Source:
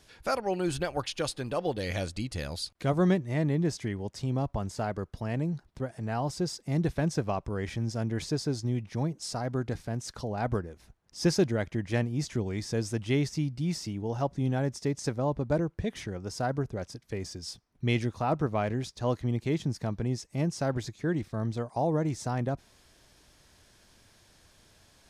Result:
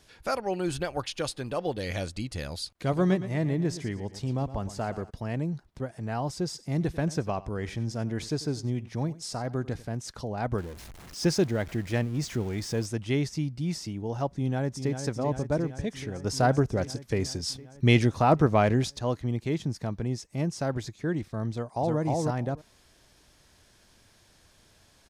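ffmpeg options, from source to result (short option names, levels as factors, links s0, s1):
-filter_complex "[0:a]asplit=3[s0][s1][s2];[s0]afade=t=out:st=2.85:d=0.02[s3];[s1]aecho=1:1:115|230|345|460:0.211|0.0782|0.0289|0.0107,afade=t=in:st=2.85:d=0.02,afade=t=out:st=5.09:d=0.02[s4];[s2]afade=t=in:st=5.09:d=0.02[s5];[s3][s4][s5]amix=inputs=3:normalize=0,asplit=3[s6][s7][s8];[s6]afade=t=out:st=6.54:d=0.02[s9];[s7]aecho=1:1:94:0.119,afade=t=in:st=6.54:d=0.02,afade=t=out:st=9.86:d=0.02[s10];[s8]afade=t=in:st=9.86:d=0.02[s11];[s9][s10][s11]amix=inputs=3:normalize=0,asettb=1/sr,asplit=3[s12][s13][s14];[s12]atrim=end=10.584[s15];[s13]atrim=start=10.58:end=12.86,asetpts=PTS-STARTPTS,afade=t=in:d=0.004:c=qsin,afade=t=out:st=2.276:d=0.004:c=qsin,aeval=exprs='val(0)+0.5*0.00891*sgn(val(0))':c=same[s16];[s14]atrim=start=12.856[s17];[s15][s16]acrossfade=d=0.004:c1=hsin:c2=qsin[s18];[s18][s17]acrossfade=d=0.004:c1=qsin:c2=hsin,asplit=2[s19][s20];[s20]afade=t=in:st=14.3:d=0.01,afade=t=out:st=15.03:d=0.01,aecho=0:1:390|780|1170|1560|1950|2340|2730|3120|3510|3900|4290:0.398107|0.278675|0.195073|0.136551|0.0955855|0.0669099|0.0468369|0.0327858|0.0229501|0.0160651|0.0112455[s21];[s19][s21]amix=inputs=2:normalize=0,asettb=1/sr,asplit=3[s22][s23][s24];[s22]atrim=end=16.244[s25];[s23]atrim=start=16.24:end=18.99,asetpts=PTS-STARTPTS,afade=t=in:d=0.004:c=qsin,afade=t=out:st=2.746:d=0.004:c=qsin,acontrast=90[s26];[s24]atrim=start=18.986[s27];[s25][s26]acrossfade=d=0.004:c1=hsin:c2=qsin[s28];[s28][s27]acrossfade=d=0.004:c1=qsin:c2=hsin,asplit=2[s29][s30];[s30]afade=t=in:st=21.51:d=0.01,afade=t=out:st=21.99:d=0.01,aecho=0:1:310|620:0.841395|0.0841395[s31];[s29][s31]amix=inputs=2:normalize=0"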